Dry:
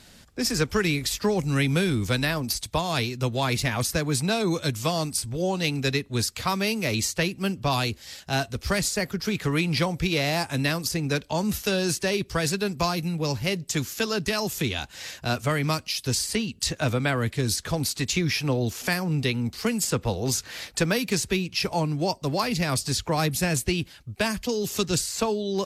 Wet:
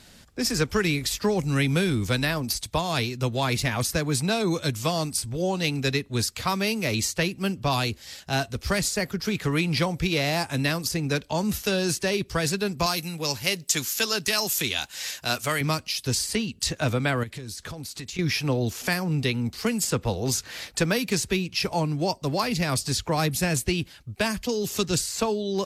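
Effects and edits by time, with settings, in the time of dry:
12.86–15.61 s: tilt EQ +2.5 dB/octave
17.23–18.19 s: compression 16:1, threshold -32 dBFS

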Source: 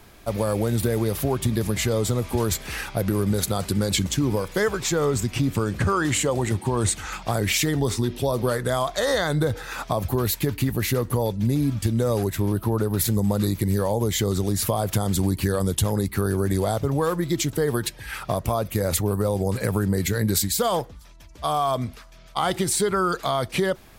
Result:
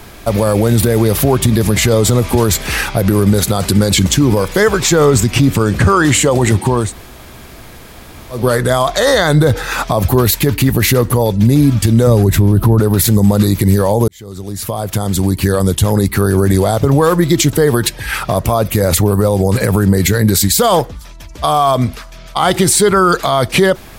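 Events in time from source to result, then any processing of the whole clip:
6.81–8.41 s: room tone, crossfade 0.24 s
12.07–12.80 s: bass shelf 310 Hz +10.5 dB
14.08–16.34 s: fade in
whole clip: loudness maximiser +15 dB; trim -1 dB

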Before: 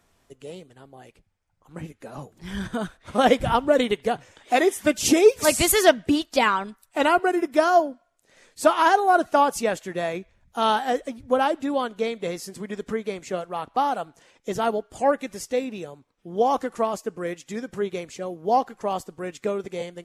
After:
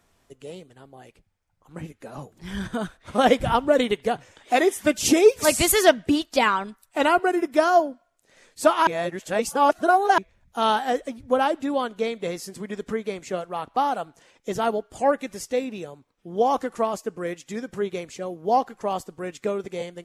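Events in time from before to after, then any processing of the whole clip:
8.87–10.18 s: reverse

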